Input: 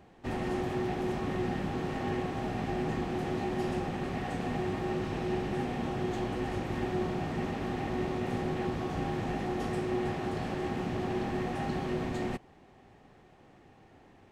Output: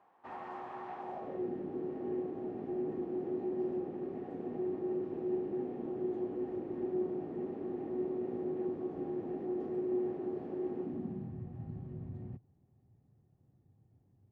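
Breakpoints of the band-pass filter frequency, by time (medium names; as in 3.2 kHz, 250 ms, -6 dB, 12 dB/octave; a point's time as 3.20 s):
band-pass filter, Q 2.7
0.97 s 1 kHz
1.51 s 360 Hz
10.81 s 360 Hz
11.38 s 110 Hz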